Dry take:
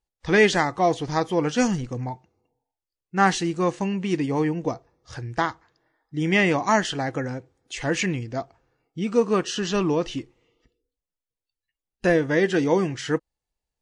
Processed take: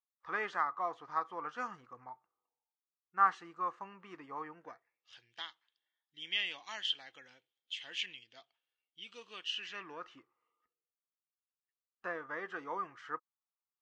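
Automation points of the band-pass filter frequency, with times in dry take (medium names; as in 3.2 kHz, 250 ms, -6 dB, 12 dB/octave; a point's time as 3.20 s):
band-pass filter, Q 7.1
4.50 s 1.2 kHz
5.17 s 3.2 kHz
9.43 s 3.2 kHz
10.12 s 1.2 kHz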